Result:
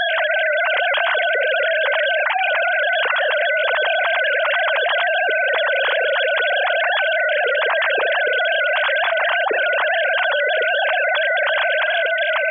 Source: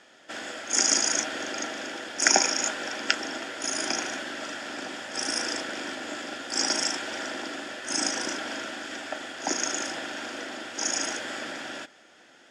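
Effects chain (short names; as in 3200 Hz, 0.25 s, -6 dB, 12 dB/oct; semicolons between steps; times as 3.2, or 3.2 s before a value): sine-wave speech; on a send at -22.5 dB: reverb RT60 1.0 s, pre-delay 3 ms; on the sum: fast leveller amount 100%; gain -5 dB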